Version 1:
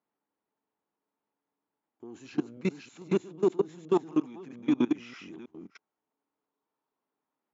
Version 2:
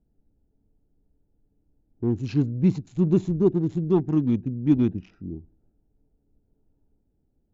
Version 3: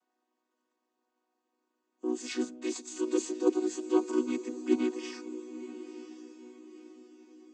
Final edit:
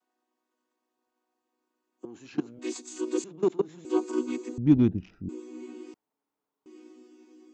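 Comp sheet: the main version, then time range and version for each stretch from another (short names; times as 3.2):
3
2.05–2.59 from 1
3.24–3.85 from 1
4.58–5.29 from 2
5.94–6.66 from 1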